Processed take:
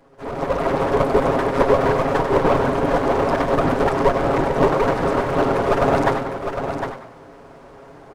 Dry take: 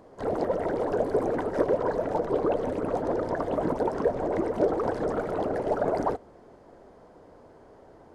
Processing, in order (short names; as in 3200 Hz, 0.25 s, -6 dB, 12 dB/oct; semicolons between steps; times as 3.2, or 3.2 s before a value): minimum comb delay 7.3 ms; frequency-shifting echo 97 ms, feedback 37%, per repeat +120 Hz, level -10 dB; AGC gain up to 10 dB; echo 0.757 s -7.5 dB